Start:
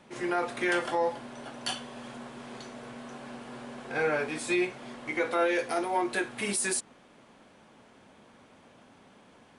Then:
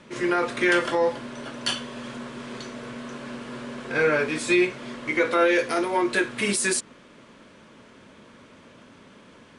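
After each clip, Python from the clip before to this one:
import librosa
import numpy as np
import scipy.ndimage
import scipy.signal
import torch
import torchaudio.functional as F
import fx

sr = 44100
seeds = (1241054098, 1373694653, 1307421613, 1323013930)

y = scipy.signal.sosfilt(scipy.signal.butter(2, 8600.0, 'lowpass', fs=sr, output='sos'), x)
y = fx.peak_eq(y, sr, hz=770.0, db=-14.0, octaves=0.26)
y = y * librosa.db_to_amplitude(7.5)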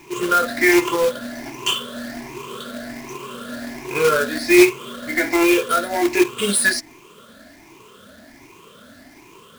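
y = fx.spec_ripple(x, sr, per_octave=0.72, drift_hz=1.3, depth_db=21)
y = y + 0.36 * np.pad(y, (int(2.9 * sr / 1000.0), 0))[:len(y)]
y = fx.quant_companded(y, sr, bits=4)
y = y * librosa.db_to_amplitude(-1.0)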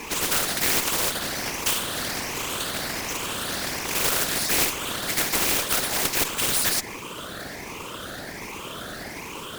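y = fx.whisperise(x, sr, seeds[0])
y = fx.tube_stage(y, sr, drive_db=4.0, bias=0.75)
y = fx.spectral_comp(y, sr, ratio=4.0)
y = y * librosa.db_to_amplitude(-3.0)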